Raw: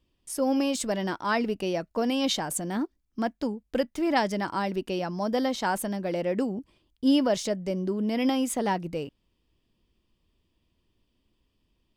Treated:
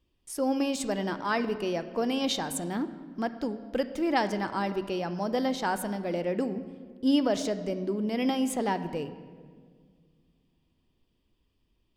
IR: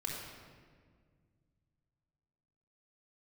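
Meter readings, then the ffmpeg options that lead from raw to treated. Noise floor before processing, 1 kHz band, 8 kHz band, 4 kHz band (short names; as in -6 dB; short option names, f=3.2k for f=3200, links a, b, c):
-74 dBFS, -1.5 dB, -3.5 dB, -2.0 dB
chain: -filter_complex "[0:a]asplit=2[a][b];[1:a]atrim=start_sample=2205,lowpass=5.7k[c];[b][c]afir=irnorm=-1:irlink=0,volume=-9.5dB[d];[a][d]amix=inputs=2:normalize=0,volume=-3.5dB"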